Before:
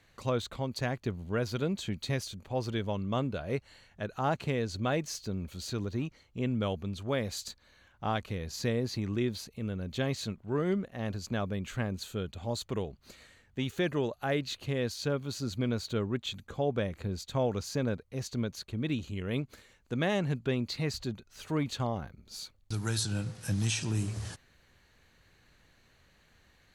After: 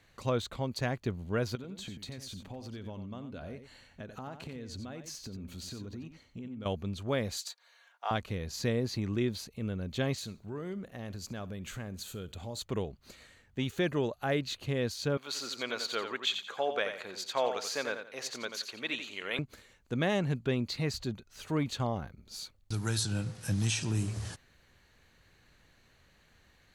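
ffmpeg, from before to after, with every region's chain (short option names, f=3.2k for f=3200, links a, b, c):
-filter_complex "[0:a]asettb=1/sr,asplit=3[a][b][c];[a]atrim=end=1.554[d];[b]atrim=start=1.55:end=6.66,asetpts=PTS-STARTPTS,afade=t=in:d=0.004:c=qsin,afade=t=out:st=5.106:d=0.004:c=qsin,equalizer=f=250:w=5.4:g=8,acompressor=threshold=-39dB:ratio=10:attack=3.2:release=140:knee=1:detection=peak,aecho=1:1:90:0.335,atrim=end_sample=225351[e];[c]atrim=start=6.656[f];[d][e]acrossfade=d=0.004:c1=hsin:c2=qsin[g];[g][f]acrossfade=d=0.004:c1=qsin:c2=hsin,asettb=1/sr,asplit=3[h][i][j];[h]atrim=end=7.374[k];[i]atrim=start=7.37:end=8.11,asetpts=PTS-STARTPTS,afade=t=in:d=0.004:c=qsin,afade=t=out:st=0.736:d=0.004:c=qsin,highpass=f=620:w=0.5412,highpass=f=620:w=1.3066,aecho=1:1:4.3:0.44,atrim=end_sample=32634[l];[j]atrim=start=8.106[m];[k][l]acrossfade=d=0.004:c1=hsin:c2=qsin[n];[n][m]acrossfade=d=0.004:c1=qsin:c2=hsin,asettb=1/sr,asplit=3[o][p][q];[o]atrim=end=10.184[r];[p]atrim=start=10.18:end=12.59,asetpts=PTS-STARTPTS,afade=t=in:d=0.004:c=qsin,afade=t=out:st=2.406:d=0.004:c=qsin,highshelf=f=7.5k:g=8,acompressor=threshold=-39dB:ratio=2.5:attack=3.2:release=140:knee=1:detection=peak,aecho=1:1:66|132|198:0.1|0.033|0.0109,atrim=end_sample=106281[s];[q]atrim=start=12.586[t];[r][s]acrossfade=d=0.004:c1=hsin:c2=qsin[u];[u][t]acrossfade=d=0.004:c1=qsin:c2=hsin,asettb=1/sr,asplit=3[v][w][x];[v]atrim=end=15.174[y];[w]atrim=start=15.17:end=19.39,asetpts=PTS-STARTPTS,afade=t=in:d=0.004:c=qsin,afade=t=out:st=4.216:d=0.004:c=qsin,highpass=560,equalizer=f=2.1k:w=0.39:g=7.5,aecho=1:1:87|174|261:0.398|0.107|0.029,atrim=end_sample=186102[z];[x]atrim=start=19.386[aa];[y][z]acrossfade=d=0.004:c1=hsin:c2=qsin[ab];[ab][aa]acrossfade=d=0.004:c1=qsin:c2=hsin"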